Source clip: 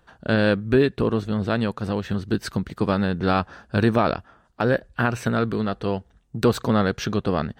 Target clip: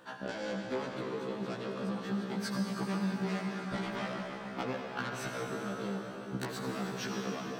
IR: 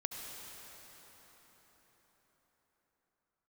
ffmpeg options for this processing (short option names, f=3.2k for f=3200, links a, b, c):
-filter_complex "[0:a]asettb=1/sr,asplit=3[a][b][c];[a]atrim=end=1.804[d];[b]atrim=start=1.8:end=4.07,asetpts=PTS-STARTPTS,afade=t=in:d=0.004:c=qsin,afade=t=out:st=2.266:d=0.004:c=qsin,aecho=1:1:5.1:0.97,atrim=end_sample=100107[e];[c]atrim=start=4.066[f];[d][e]acrossfade=d=0.004:c1=hsin:c2=qsin[g];[g][f]acrossfade=d=0.004:c1=qsin:c2=hsin,aeval=exprs='0.596*sin(PI/2*3.55*val(0)/0.596)':c=same,highpass=f=150:w=0.5412,highpass=f=150:w=1.3066,acompressor=threshold=-26dB:ratio=16[h];[1:a]atrim=start_sample=2205[i];[h][i]afir=irnorm=-1:irlink=0,afftfilt=real='re*1.73*eq(mod(b,3),0)':imag='im*1.73*eq(mod(b,3),0)':win_size=2048:overlap=0.75,volume=-4.5dB"